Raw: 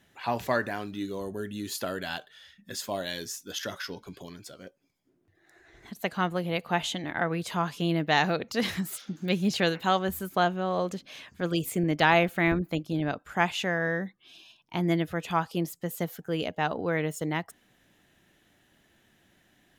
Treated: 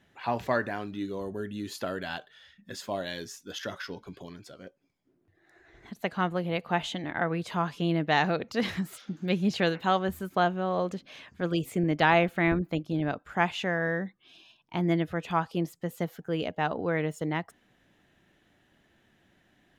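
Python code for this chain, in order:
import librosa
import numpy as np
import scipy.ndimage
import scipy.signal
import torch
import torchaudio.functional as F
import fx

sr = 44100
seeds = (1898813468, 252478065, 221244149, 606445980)

y = fx.lowpass(x, sr, hz=3100.0, slope=6)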